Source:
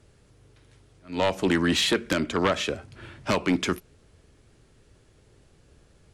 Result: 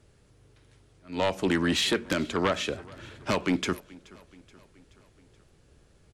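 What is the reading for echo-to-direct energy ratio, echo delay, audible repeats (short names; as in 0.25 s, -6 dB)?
-21.5 dB, 0.427 s, 3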